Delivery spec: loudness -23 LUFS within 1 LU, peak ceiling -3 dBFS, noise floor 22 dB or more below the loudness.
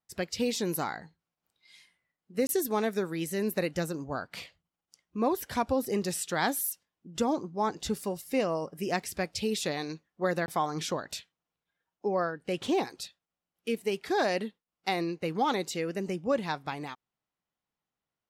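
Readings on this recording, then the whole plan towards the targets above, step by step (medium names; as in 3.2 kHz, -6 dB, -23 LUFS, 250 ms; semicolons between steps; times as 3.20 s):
dropouts 2; longest dropout 21 ms; loudness -31.5 LUFS; peak level -15.0 dBFS; loudness target -23.0 LUFS
-> interpolate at 2.47/10.46 s, 21 ms; trim +8.5 dB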